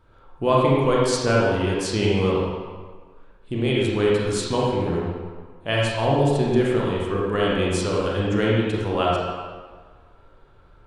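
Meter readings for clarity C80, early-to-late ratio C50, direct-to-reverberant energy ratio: 1.0 dB, −2.0 dB, −5.0 dB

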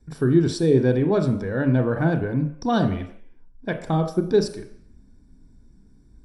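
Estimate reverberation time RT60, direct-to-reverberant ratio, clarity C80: non-exponential decay, 7.0 dB, 12.5 dB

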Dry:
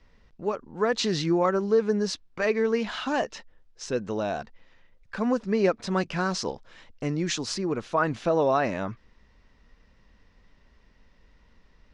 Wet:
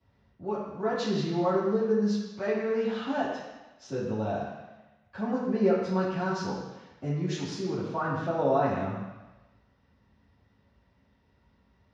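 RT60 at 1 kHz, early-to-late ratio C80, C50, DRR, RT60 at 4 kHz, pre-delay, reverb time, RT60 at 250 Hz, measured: 1.2 s, 3.5 dB, 1.0 dB, −12.0 dB, 1.2 s, 3 ms, 1.1 s, 1.0 s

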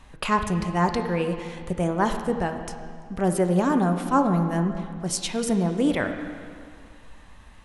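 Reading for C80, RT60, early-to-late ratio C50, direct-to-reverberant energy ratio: 8.0 dB, 2.1 s, 7.0 dB, 5.5 dB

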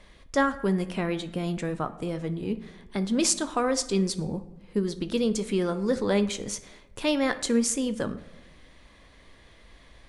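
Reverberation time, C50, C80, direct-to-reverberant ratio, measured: 1.1 s, 14.0 dB, 17.0 dB, 10.0 dB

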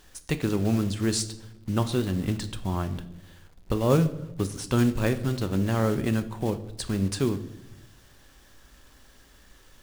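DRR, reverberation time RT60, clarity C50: 10.0 dB, 0.90 s, 14.5 dB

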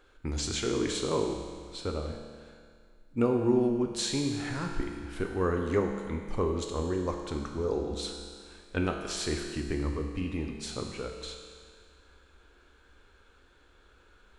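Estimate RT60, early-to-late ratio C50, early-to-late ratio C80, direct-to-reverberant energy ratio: 1.9 s, 4.5 dB, 5.5 dB, 2.0 dB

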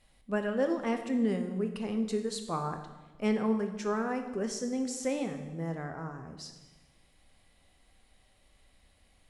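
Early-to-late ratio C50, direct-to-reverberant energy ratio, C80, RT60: 8.0 dB, 6.0 dB, 10.5 dB, 1.2 s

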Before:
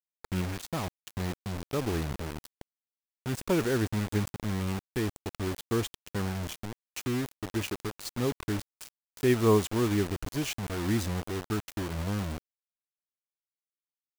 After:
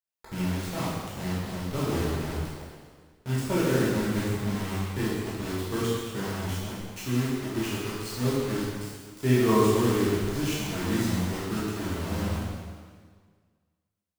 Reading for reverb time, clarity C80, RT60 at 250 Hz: 1.7 s, 0.5 dB, 1.7 s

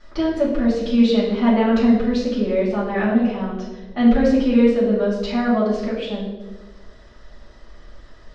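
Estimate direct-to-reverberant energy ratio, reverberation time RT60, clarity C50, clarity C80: −9.0 dB, 1.3 s, 3.0 dB, 5.5 dB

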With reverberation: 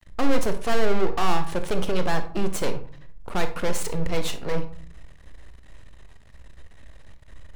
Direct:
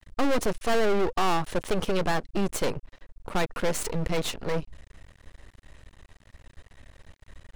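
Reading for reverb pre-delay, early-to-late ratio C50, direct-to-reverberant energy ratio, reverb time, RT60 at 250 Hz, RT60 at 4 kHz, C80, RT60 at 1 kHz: 23 ms, 11.0 dB, 8.0 dB, 0.50 s, 0.80 s, 0.30 s, 16.0 dB, 0.50 s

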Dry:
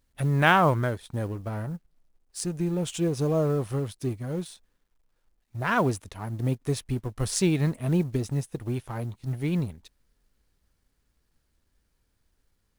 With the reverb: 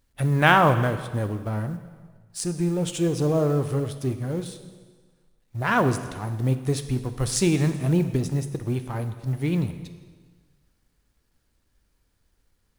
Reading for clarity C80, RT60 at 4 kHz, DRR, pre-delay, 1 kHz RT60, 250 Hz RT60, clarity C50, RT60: 12.0 dB, 1.4 s, 8.5 dB, 3 ms, 1.5 s, 1.5 s, 10.5 dB, 1.5 s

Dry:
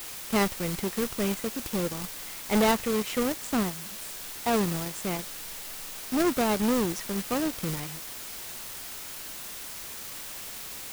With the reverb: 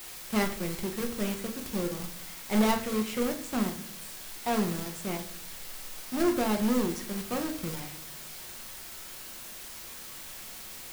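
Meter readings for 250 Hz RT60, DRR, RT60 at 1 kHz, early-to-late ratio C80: 0.75 s, 3.5 dB, 0.45 s, 14.5 dB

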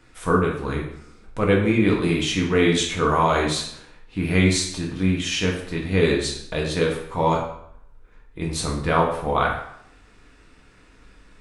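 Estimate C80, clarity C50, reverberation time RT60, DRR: 8.5 dB, 5.0 dB, 0.70 s, −2.0 dB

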